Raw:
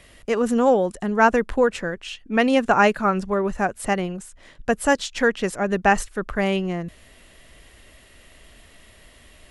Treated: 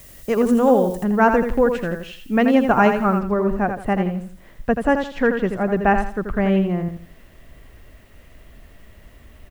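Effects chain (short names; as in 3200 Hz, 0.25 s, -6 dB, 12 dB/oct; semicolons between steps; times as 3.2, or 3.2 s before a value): bell 8000 Hz -9 dB 3 oct; feedback echo 83 ms, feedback 29%, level -7 dB; added noise blue -52 dBFS; tone controls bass +5 dB, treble +5 dB, from 1.03 s treble -3 dB, from 3.18 s treble -12 dB; gain +1 dB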